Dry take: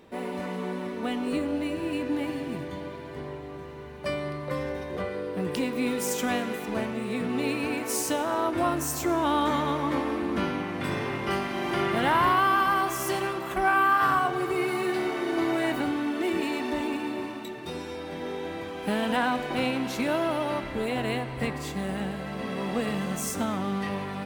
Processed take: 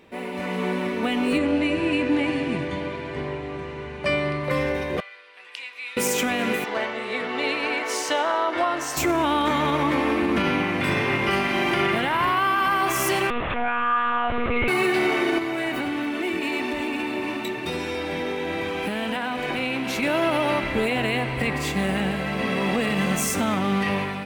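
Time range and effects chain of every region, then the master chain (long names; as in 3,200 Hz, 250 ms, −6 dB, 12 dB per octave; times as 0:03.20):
0:01.38–0:04.44: Butterworth low-pass 9,800 Hz 48 dB per octave + high-shelf EQ 6,600 Hz −5 dB
0:05.00–0:05.97: band-pass filter 780–3,300 Hz + first difference
0:06.64–0:08.97: three-way crossover with the lows and the highs turned down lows −19 dB, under 410 Hz, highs −18 dB, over 6,100 Hz + notch filter 2,500 Hz, Q 5.8
0:13.30–0:14.68: high-pass filter 88 Hz + one-pitch LPC vocoder at 8 kHz 240 Hz
0:15.38–0:20.03: downward compressor, threshold −31 dBFS + single-tap delay 279 ms −13.5 dB
whole clip: automatic gain control gain up to 7 dB; parametric band 2,400 Hz +7.5 dB 0.76 octaves; brickwall limiter −13 dBFS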